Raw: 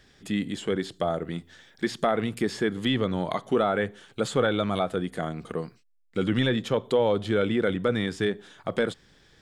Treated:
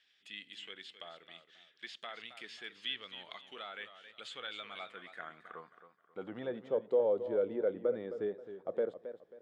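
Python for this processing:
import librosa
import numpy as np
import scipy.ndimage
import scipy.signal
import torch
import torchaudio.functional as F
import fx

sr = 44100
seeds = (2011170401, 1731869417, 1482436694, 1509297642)

y = fx.filter_sweep_bandpass(x, sr, from_hz=2900.0, to_hz=520.0, start_s=4.49, end_s=6.74, q=2.4)
y = fx.echo_warbled(y, sr, ms=267, feedback_pct=32, rate_hz=2.8, cents=85, wet_db=-11.5)
y = F.gain(torch.from_numpy(y), -5.0).numpy()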